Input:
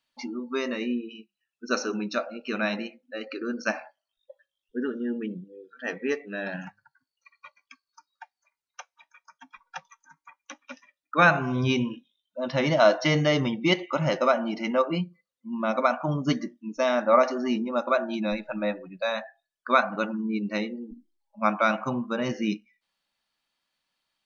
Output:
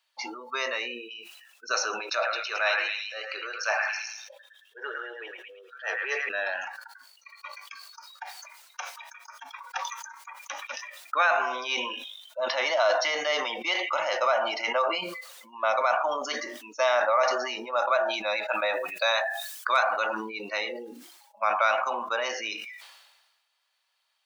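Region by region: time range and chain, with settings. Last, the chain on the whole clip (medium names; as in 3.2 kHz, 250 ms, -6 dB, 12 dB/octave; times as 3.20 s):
2.00–6.29 s: transient shaper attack -7 dB, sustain +3 dB + steep high-pass 340 Hz 48 dB/octave + repeats whose band climbs or falls 109 ms, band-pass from 1.7 kHz, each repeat 0.7 oct, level 0 dB
18.48–20.00 s: treble shelf 5 kHz +11.5 dB + hard clipper -8 dBFS + tape noise reduction on one side only encoder only
whole clip: peak limiter -17.5 dBFS; high-pass 620 Hz 24 dB/octave; decay stretcher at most 44 dB/s; trim +5 dB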